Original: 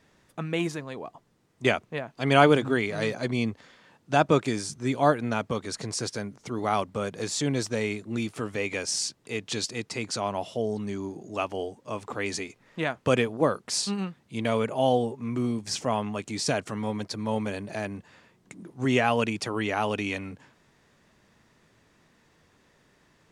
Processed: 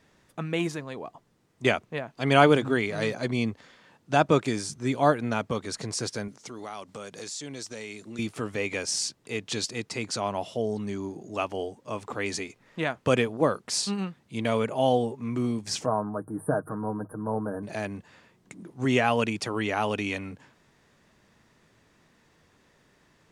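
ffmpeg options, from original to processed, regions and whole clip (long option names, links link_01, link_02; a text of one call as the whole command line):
ffmpeg -i in.wav -filter_complex "[0:a]asettb=1/sr,asplit=3[link_01][link_02][link_03];[link_01]atrim=end=6.284[link_04];[link_02]atrim=start=6.28:end=8.19,asetpts=PTS-STARTPTS,afade=type=in:duration=0.004:curve=qsin,afade=type=out:start_time=1.906:duration=0.004:curve=qsin,highpass=frequency=200:poles=1,equalizer=frequency=6400:width=0.56:gain=8,acompressor=threshold=-38dB:ratio=3:attack=3.2:release=140:knee=1:detection=peak[link_05];[link_03]atrim=start=8.186[link_06];[link_04][link_05]acrossfade=duration=0.004:curve1=hsin:curve2=qsin[link_07];[link_07][link_06]acrossfade=duration=0.004:curve1=qsin:curve2=hsin,asettb=1/sr,asplit=3[link_08][link_09][link_10];[link_08]atrim=end=15.864[link_11];[link_09]atrim=start=15.86:end=17.63,asetpts=PTS-STARTPTS,afade=type=in:duration=0.004:curve=qsin,afade=type=out:start_time=1.766:duration=0.004:curve=qsin,asuperstop=centerf=4100:order=20:qfactor=0.52,bandreject=frequency=50:width_type=h:width=6,bandreject=frequency=100:width_type=h:width=6,bandreject=frequency=150:width_type=h:width=6,aecho=1:1:6.4:0.44,atrim=end_sample=78057[link_12];[link_10]atrim=start=17.626[link_13];[link_11][link_12]acrossfade=duration=0.004:curve1=hsin:curve2=qsin[link_14];[link_14][link_13]acrossfade=duration=0.004:curve1=qsin:curve2=hsin" out.wav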